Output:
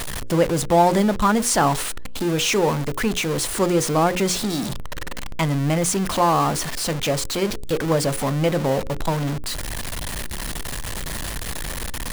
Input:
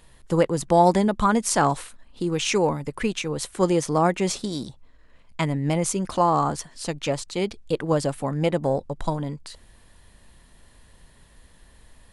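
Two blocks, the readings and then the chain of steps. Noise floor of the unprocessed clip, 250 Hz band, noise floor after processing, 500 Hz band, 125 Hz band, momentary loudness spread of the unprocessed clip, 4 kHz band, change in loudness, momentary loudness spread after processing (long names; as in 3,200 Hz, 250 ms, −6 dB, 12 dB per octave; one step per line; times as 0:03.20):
−54 dBFS, +2.5 dB, −28 dBFS, +2.0 dB, +3.5 dB, 11 LU, +7.0 dB, +2.0 dB, 11 LU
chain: converter with a step at zero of −22 dBFS
mains-hum notches 60/120/180/240/300/360/420/480/540 Hz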